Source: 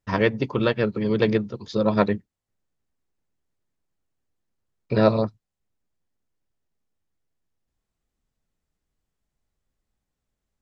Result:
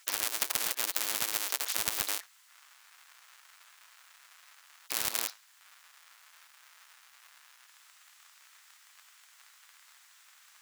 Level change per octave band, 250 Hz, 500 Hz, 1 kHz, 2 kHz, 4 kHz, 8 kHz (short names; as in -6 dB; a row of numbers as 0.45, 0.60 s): -30.5 dB, -26.5 dB, -12.0 dB, -6.5 dB, +2.5 dB, n/a